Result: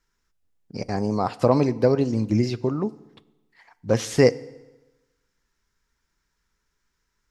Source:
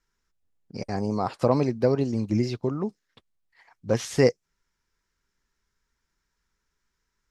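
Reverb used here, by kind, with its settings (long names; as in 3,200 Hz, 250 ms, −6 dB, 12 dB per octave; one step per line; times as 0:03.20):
feedback delay network reverb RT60 1.1 s, low-frequency decay 1×, high-frequency decay 0.85×, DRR 17.5 dB
level +3 dB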